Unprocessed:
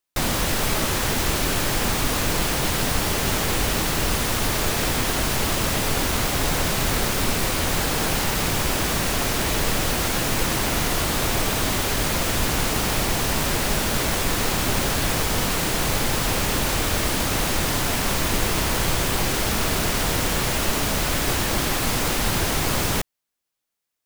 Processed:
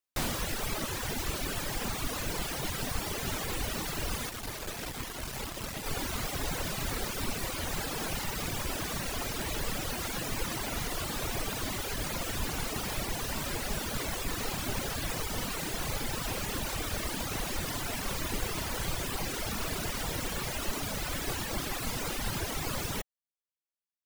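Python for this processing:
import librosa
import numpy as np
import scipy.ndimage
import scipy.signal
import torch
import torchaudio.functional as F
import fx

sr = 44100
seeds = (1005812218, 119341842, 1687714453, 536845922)

y = fx.dereverb_blind(x, sr, rt60_s=1.9)
y = fx.tube_stage(y, sr, drive_db=20.0, bias=0.75, at=(4.29, 5.86))
y = F.gain(torch.from_numpy(y), -8.0).numpy()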